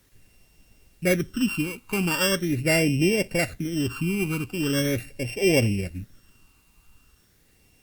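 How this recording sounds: a buzz of ramps at a fixed pitch in blocks of 16 samples; phasing stages 12, 0.41 Hz, lowest notch 580–1300 Hz; a quantiser's noise floor 12-bit, dither triangular; Opus

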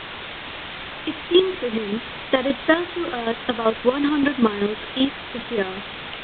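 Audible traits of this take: chopped level 5.2 Hz, depth 65%, duty 25%; a quantiser's noise floor 6-bit, dither triangular; A-law

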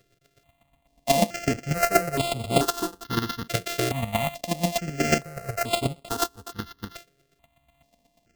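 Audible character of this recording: a buzz of ramps at a fixed pitch in blocks of 64 samples; chopped level 8.2 Hz, depth 65%, duty 15%; aliases and images of a low sample rate 10 kHz, jitter 0%; notches that jump at a steady rate 2.3 Hz 240–5900 Hz

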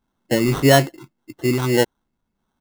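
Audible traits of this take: phasing stages 2, 1.7 Hz, lowest notch 670–4000 Hz; aliases and images of a low sample rate 2.4 kHz, jitter 0%

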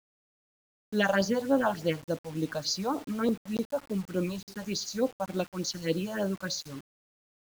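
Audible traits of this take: phasing stages 4, 3.4 Hz, lowest notch 320–2500 Hz; a quantiser's noise floor 8-bit, dither none

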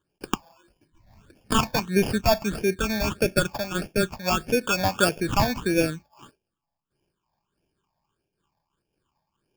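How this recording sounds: aliases and images of a low sample rate 2 kHz, jitter 0%; phasing stages 8, 1.6 Hz, lowest notch 380–1200 Hz; random flutter of the level

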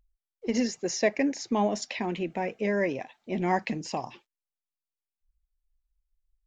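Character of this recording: noise floor -92 dBFS; spectral tilt -4.5 dB/octave

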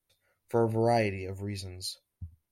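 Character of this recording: noise floor -84 dBFS; spectral tilt -5.5 dB/octave

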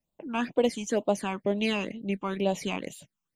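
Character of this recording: phasing stages 8, 2.1 Hz, lowest notch 540–1900 Hz

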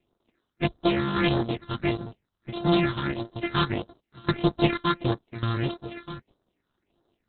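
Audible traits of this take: a buzz of ramps at a fixed pitch in blocks of 128 samples; phasing stages 6, 1.6 Hz, lowest notch 570–2400 Hz; random-step tremolo, depth 85%; Opus

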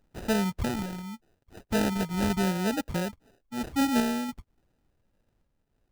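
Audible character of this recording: phasing stages 2, 0.8 Hz, lowest notch 510–1700 Hz; aliases and images of a low sample rate 1.1 kHz, jitter 0%; random-step tremolo

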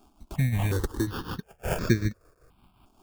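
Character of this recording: aliases and images of a low sample rate 2 kHz, jitter 0%; tremolo triangle 5.4 Hz, depth 70%; a quantiser's noise floor 12-bit, dither none; notches that jump at a steady rate 2.8 Hz 500–3000 Hz

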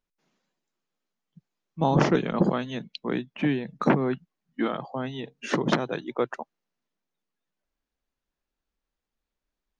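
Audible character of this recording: noise floor -87 dBFS; spectral tilt -5.5 dB/octave

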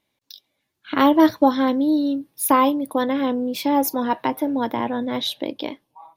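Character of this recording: noise floor -76 dBFS; spectral tilt -4.0 dB/octave

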